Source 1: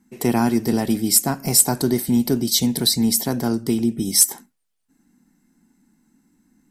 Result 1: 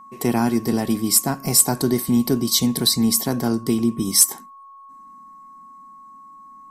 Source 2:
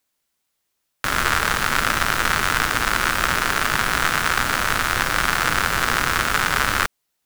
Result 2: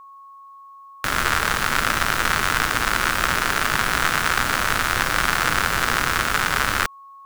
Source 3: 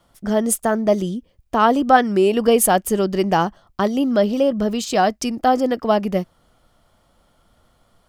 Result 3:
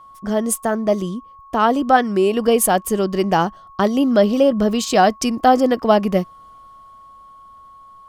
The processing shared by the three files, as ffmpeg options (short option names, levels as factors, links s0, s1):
-af "dynaudnorm=f=140:g=21:m=3.76,aeval=exprs='val(0)+0.01*sin(2*PI*1100*n/s)':c=same,volume=0.891"